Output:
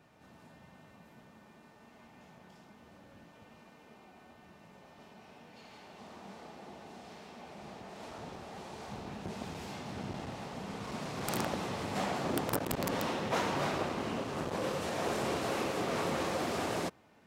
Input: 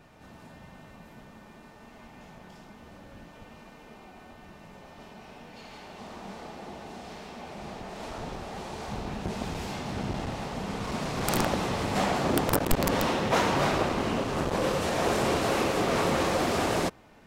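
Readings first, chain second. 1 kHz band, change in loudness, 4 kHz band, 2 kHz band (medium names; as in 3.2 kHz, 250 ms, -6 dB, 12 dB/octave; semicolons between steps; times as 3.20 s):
-7.5 dB, -7.5 dB, -7.5 dB, -7.5 dB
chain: high-pass 86 Hz; trim -7.5 dB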